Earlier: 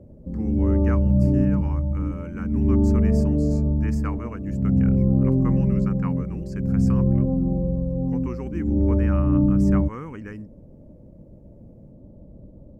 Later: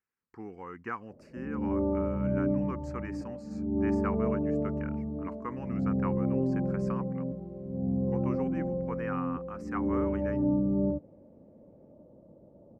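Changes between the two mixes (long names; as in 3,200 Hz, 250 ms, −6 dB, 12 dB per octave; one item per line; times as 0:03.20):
background: entry +1.10 s
master: add resonant band-pass 1,000 Hz, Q 0.58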